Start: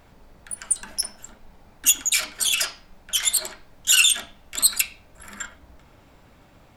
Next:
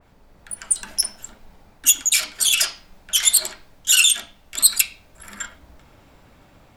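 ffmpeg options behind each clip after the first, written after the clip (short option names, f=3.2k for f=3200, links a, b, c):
-af "dynaudnorm=f=260:g=3:m=4.5dB,adynamicequalizer=threshold=0.0251:dfrequency=2400:dqfactor=0.7:tfrequency=2400:tqfactor=0.7:attack=5:release=100:ratio=0.375:range=2.5:mode=boostabove:tftype=highshelf,volume=-3dB"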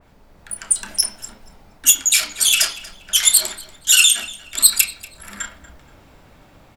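-filter_complex "[0:a]asplit=2[a][b];[b]adelay=30,volume=-12dB[c];[a][c]amix=inputs=2:normalize=0,asplit=2[d][e];[e]adelay=237,lowpass=f=4k:p=1,volume=-16.5dB,asplit=2[f][g];[g]adelay=237,lowpass=f=4k:p=1,volume=0.33,asplit=2[h][i];[i]adelay=237,lowpass=f=4k:p=1,volume=0.33[j];[d][f][h][j]amix=inputs=4:normalize=0,asoftclip=type=hard:threshold=-4dB,volume=2.5dB"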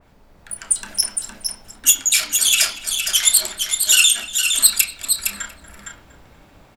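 -af "aecho=1:1:461:0.501,volume=-1dB"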